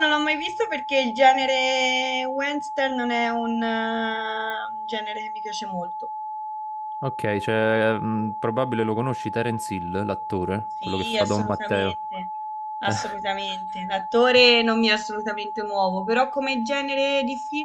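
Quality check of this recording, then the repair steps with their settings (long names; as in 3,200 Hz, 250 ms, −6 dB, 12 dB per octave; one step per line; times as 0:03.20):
whistle 860 Hz −29 dBFS
0:04.50: click −19 dBFS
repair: click removal
notch filter 860 Hz, Q 30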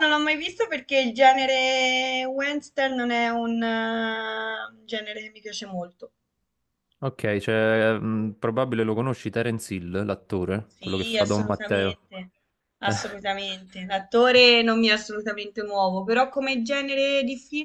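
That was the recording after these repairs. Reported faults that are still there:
none of them is left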